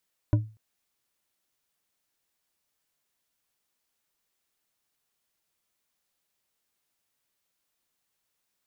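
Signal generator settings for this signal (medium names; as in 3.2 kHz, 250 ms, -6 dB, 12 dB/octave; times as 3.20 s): glass hit bar, length 0.24 s, lowest mode 109 Hz, decay 0.33 s, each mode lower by 7 dB, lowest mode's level -15 dB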